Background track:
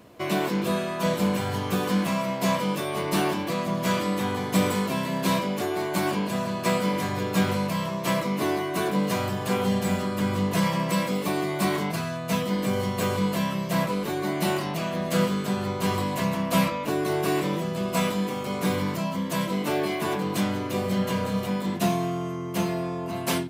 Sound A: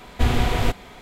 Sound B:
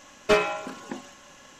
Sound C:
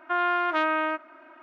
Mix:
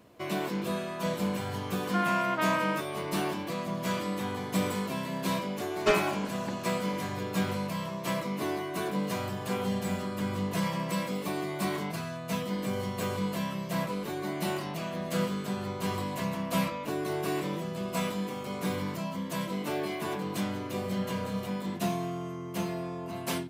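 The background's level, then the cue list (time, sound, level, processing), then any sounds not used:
background track −6.5 dB
0:01.84: mix in C −4.5 dB
0:05.57: mix in B −4 dB
not used: A

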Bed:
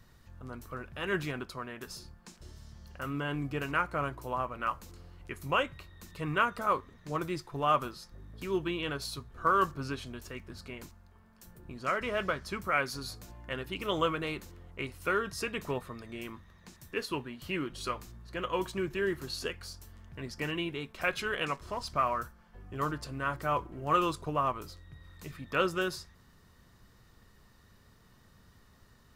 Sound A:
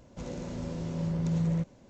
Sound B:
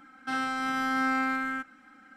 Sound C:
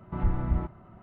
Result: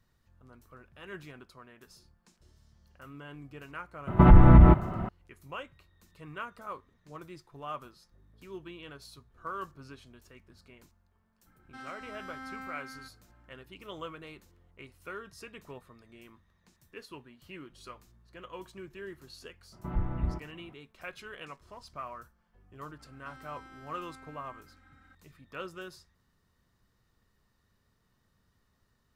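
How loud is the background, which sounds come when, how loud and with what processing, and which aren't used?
bed −12 dB
0:04.07: mix in C −5.5 dB + boost into a limiter +23 dB
0:11.46: mix in B −16 dB
0:19.72: mix in C −4.5 dB
0:22.99: mix in B −7.5 dB + downward compressor 8 to 1, threshold −42 dBFS
not used: A

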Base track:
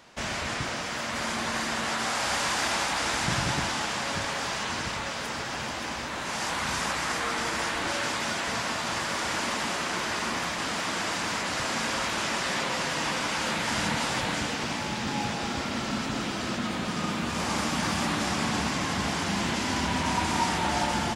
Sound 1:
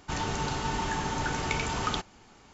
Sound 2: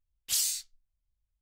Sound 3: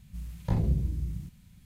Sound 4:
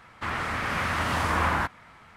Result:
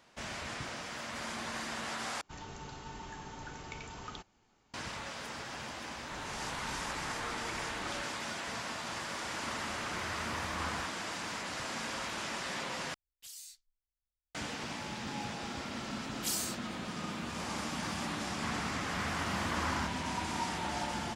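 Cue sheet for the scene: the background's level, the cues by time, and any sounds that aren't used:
base track −9.5 dB
0:02.21: overwrite with 1 −15 dB
0:05.98: mix in 1 −15.5 dB + all-pass dispersion lows, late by 44 ms, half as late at 650 Hz
0:09.20: mix in 4 −14 dB
0:12.94: overwrite with 2 −15.5 dB + brickwall limiter −23 dBFS
0:15.94: mix in 2 −7 dB
0:18.21: mix in 4 −11 dB
not used: 3

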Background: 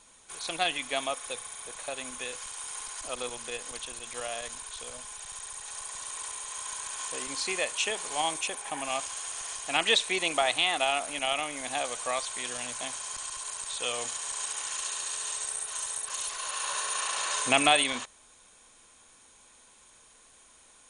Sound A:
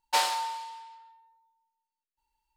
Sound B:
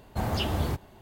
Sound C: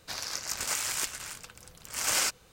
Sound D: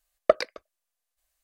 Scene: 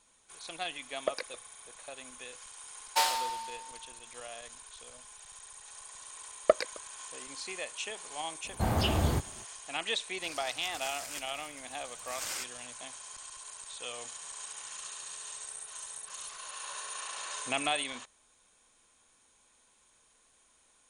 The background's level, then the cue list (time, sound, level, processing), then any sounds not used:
background −9 dB
0:00.78: mix in D −16.5 dB + boost into a limiter +9.5 dB
0:02.83: mix in A −2.5 dB + high-shelf EQ 8,800 Hz +6 dB
0:06.20: mix in D −4 dB
0:08.44: mix in B, fades 0.02 s
0:10.14: mix in C −11 dB
0:14.13: mix in C −16.5 dB + pair of resonant band-passes 430 Hz, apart 2.9 octaves

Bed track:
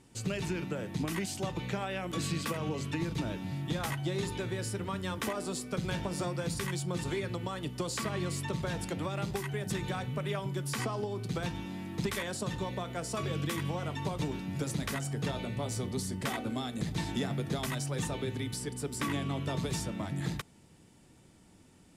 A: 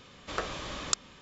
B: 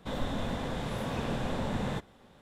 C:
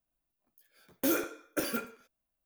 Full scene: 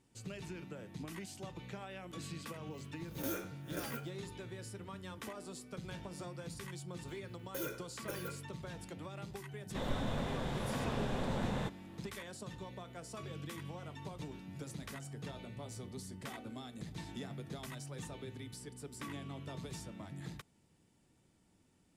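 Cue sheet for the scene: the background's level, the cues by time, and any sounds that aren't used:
bed track −11.5 dB
0:02.20: mix in C −11.5 dB + peak hold with a rise ahead of every peak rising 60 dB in 0.31 s
0:06.51: mix in C −13.5 dB + comb filter 2 ms, depth 79%
0:09.69: mix in B −4 dB
not used: A

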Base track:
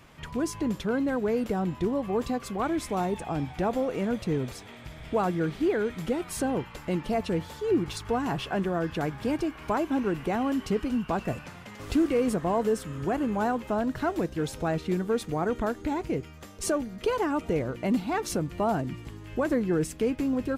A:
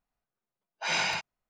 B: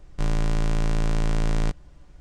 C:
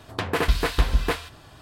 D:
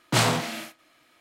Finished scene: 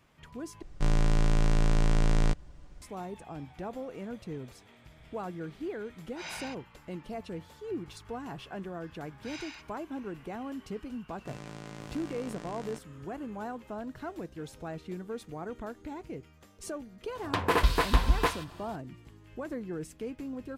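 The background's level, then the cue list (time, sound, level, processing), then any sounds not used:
base track −11.5 dB
0:00.62: overwrite with B −1.5 dB
0:05.34: mix in A −13 dB
0:08.41: mix in A −15.5 dB + high-pass filter 1,200 Hz
0:11.07: mix in B −13 dB + high-pass filter 160 Hz
0:17.15: mix in C −3.5 dB + parametric band 990 Hz +8 dB 0.35 octaves
not used: D

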